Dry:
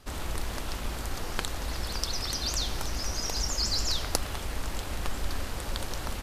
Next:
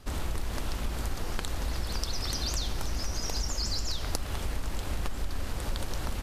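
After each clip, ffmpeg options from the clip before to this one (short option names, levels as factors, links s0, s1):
-af "lowshelf=f=330:g=5,acompressor=threshold=0.0501:ratio=6"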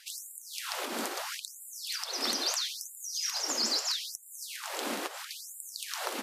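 -af "alimiter=limit=0.0841:level=0:latency=1:release=277,afftfilt=real='re*gte(b*sr/1024,200*pow(7100/200,0.5+0.5*sin(2*PI*0.76*pts/sr)))':imag='im*gte(b*sr/1024,200*pow(7100/200,0.5+0.5*sin(2*PI*0.76*pts/sr)))':win_size=1024:overlap=0.75,volume=2.11"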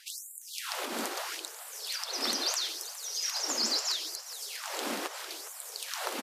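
-filter_complex "[0:a]asplit=8[s0][s1][s2][s3][s4][s5][s6][s7];[s1]adelay=413,afreqshift=94,volume=0.2[s8];[s2]adelay=826,afreqshift=188,volume=0.126[s9];[s3]adelay=1239,afreqshift=282,volume=0.0794[s10];[s4]adelay=1652,afreqshift=376,volume=0.0501[s11];[s5]adelay=2065,afreqshift=470,volume=0.0313[s12];[s6]adelay=2478,afreqshift=564,volume=0.0197[s13];[s7]adelay=2891,afreqshift=658,volume=0.0124[s14];[s0][s8][s9][s10][s11][s12][s13][s14]amix=inputs=8:normalize=0"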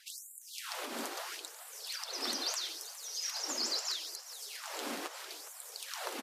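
-af "flanger=delay=0.5:depth=7.1:regen=-47:speed=0.51:shape=triangular,volume=0.891"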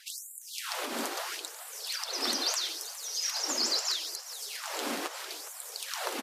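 -af "volume=1.88" -ar 44100 -c:a libvorbis -b:a 192k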